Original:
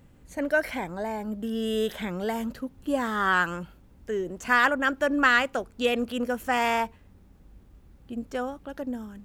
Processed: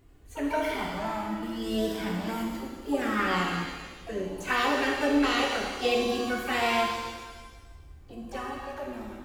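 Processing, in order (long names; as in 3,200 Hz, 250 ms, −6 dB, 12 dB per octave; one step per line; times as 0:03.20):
flanger swept by the level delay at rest 2.9 ms, full sweep at −19.5 dBFS
pitch-shifted copies added +7 semitones −7 dB
reverb with rising layers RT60 1.3 s, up +7 semitones, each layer −8 dB, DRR −1 dB
level −2 dB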